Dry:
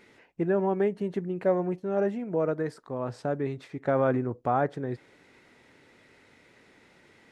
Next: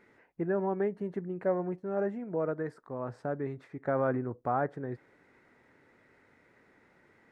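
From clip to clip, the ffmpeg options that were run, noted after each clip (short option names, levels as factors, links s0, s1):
-af "highshelf=f=2300:t=q:w=1.5:g=-8,volume=0.562"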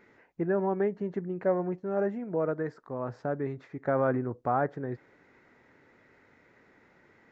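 -af "aresample=16000,aresample=44100,volume=1.33"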